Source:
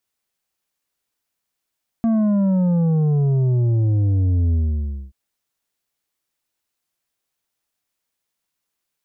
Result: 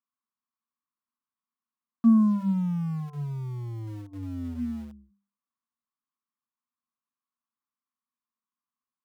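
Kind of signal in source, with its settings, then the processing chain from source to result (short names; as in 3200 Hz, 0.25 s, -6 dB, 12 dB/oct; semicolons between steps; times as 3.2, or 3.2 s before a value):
sub drop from 230 Hz, over 3.08 s, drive 7 dB, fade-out 0.59 s, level -15.5 dB
double band-pass 510 Hz, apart 2.2 oct; notches 50/100/150/200/250/300 Hz; in parallel at -6.5 dB: sample gate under -40.5 dBFS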